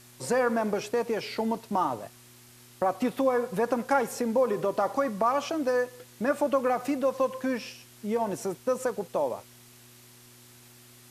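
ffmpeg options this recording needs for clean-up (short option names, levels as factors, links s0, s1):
-af "bandreject=f=121.2:t=h:w=4,bandreject=f=242.4:t=h:w=4,bandreject=f=363.6:t=h:w=4,afwtdn=0.0022"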